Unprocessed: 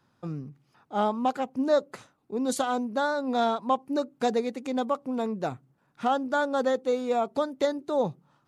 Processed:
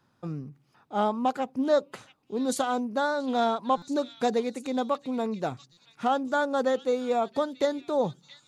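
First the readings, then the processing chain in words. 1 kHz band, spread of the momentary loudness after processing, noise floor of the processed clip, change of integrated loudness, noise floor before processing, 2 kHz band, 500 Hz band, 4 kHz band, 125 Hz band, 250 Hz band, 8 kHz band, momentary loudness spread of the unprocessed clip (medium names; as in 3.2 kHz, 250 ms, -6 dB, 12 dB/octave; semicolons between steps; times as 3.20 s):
0.0 dB, 11 LU, -68 dBFS, 0.0 dB, -69 dBFS, 0.0 dB, 0.0 dB, +0.5 dB, 0.0 dB, 0.0 dB, 0.0 dB, 11 LU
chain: repeats whose band climbs or falls 679 ms, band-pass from 3.1 kHz, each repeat 0.7 oct, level -9 dB; buffer glitch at 3.77/5.72 s, samples 256, times 8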